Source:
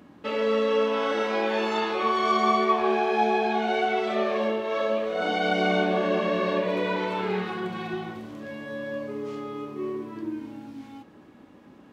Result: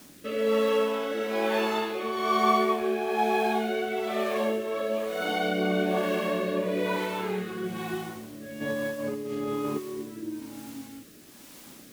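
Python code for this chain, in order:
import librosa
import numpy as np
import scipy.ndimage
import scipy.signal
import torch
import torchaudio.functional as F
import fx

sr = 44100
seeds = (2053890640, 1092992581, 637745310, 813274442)

y = fx.over_compress(x, sr, threshold_db=-35.0, ratio=-0.5, at=(8.6, 9.97), fade=0.02)
y = fx.quant_dither(y, sr, seeds[0], bits=8, dither='triangular')
y = fx.rotary(y, sr, hz=1.1)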